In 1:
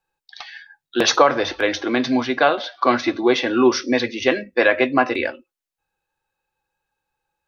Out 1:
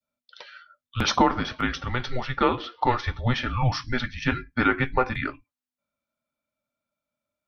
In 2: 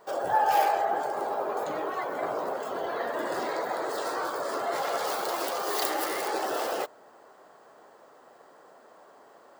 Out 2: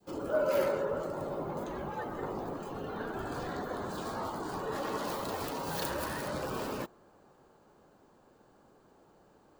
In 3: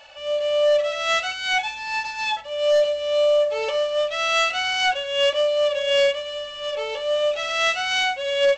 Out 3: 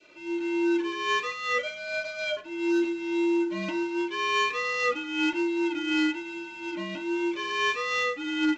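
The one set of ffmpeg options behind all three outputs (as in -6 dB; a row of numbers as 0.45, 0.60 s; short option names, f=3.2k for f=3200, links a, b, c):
-af "adynamicequalizer=threshold=0.0178:dfrequency=1400:dqfactor=0.86:tfrequency=1400:tqfactor=0.86:attack=5:release=100:ratio=0.375:range=2.5:mode=boostabove:tftype=bell,afreqshift=-250,volume=-8dB"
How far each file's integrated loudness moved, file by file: -6.5, -6.0, -6.0 LU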